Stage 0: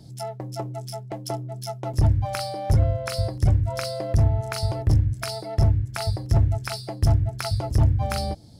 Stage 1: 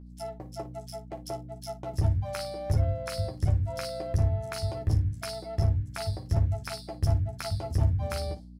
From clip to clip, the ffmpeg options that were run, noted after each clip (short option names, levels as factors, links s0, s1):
-af "agate=range=0.0224:threshold=0.0224:ratio=3:detection=peak,aeval=exprs='val(0)+0.0141*(sin(2*PI*60*n/s)+sin(2*PI*2*60*n/s)/2+sin(2*PI*3*60*n/s)/3+sin(2*PI*4*60*n/s)/4+sin(2*PI*5*60*n/s)/5)':c=same,aecho=1:1:12|56:0.562|0.2,volume=0.422"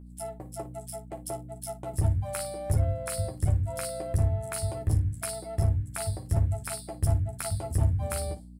-af "highshelf=f=7000:t=q:w=3:g=7"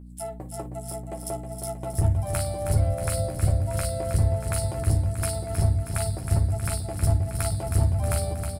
-af "aecho=1:1:317|634|951|1268|1585|1902|2219:0.422|0.24|0.137|0.0781|0.0445|0.0254|0.0145,volume=1.41"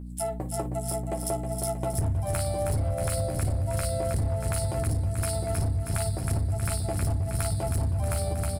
-filter_complex "[0:a]asplit=2[s0][s1];[s1]alimiter=limit=0.0944:level=0:latency=1,volume=0.75[s2];[s0][s2]amix=inputs=2:normalize=0,asoftclip=type=hard:threshold=0.168,acompressor=threshold=0.0631:ratio=6"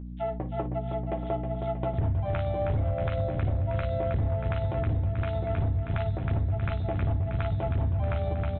-af "aresample=8000,aresample=44100"